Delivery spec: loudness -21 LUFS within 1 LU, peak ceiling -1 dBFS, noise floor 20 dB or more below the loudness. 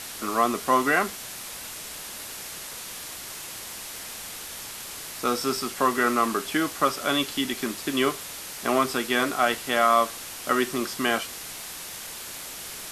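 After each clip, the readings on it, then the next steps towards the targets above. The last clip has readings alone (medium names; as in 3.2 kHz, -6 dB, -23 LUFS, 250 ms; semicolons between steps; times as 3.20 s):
noise floor -38 dBFS; noise floor target -47 dBFS; loudness -27.0 LUFS; peak level -7.0 dBFS; loudness target -21.0 LUFS
-> noise print and reduce 9 dB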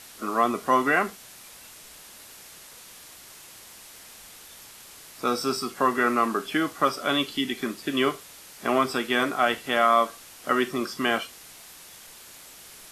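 noise floor -47 dBFS; loudness -25.0 LUFS; peak level -7.5 dBFS; loudness target -21.0 LUFS
-> trim +4 dB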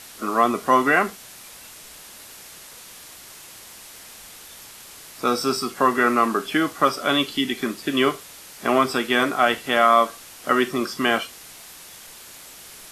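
loudness -21.0 LUFS; peak level -3.5 dBFS; noise floor -43 dBFS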